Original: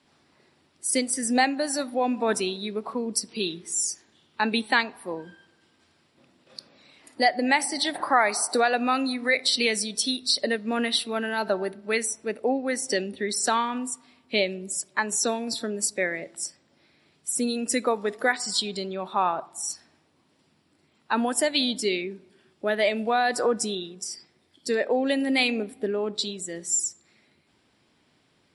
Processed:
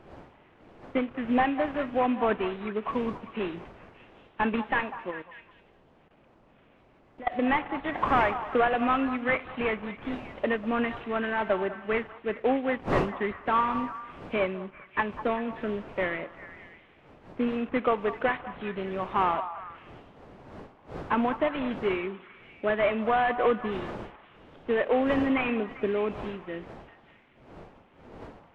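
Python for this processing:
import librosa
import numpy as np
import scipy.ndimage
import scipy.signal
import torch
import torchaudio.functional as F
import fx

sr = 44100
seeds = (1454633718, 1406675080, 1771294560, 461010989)

y = fx.cvsd(x, sr, bps=16000)
y = fx.dmg_wind(y, sr, seeds[0], corner_hz=630.0, level_db=-44.0)
y = fx.dynamic_eq(y, sr, hz=1100.0, q=5.6, threshold_db=-47.0, ratio=4.0, max_db=6)
y = fx.level_steps(y, sr, step_db=20, at=(5.1, 7.31), fade=0.02)
y = fx.echo_stepped(y, sr, ms=197, hz=950.0, octaves=0.7, feedback_pct=70, wet_db=-10.0)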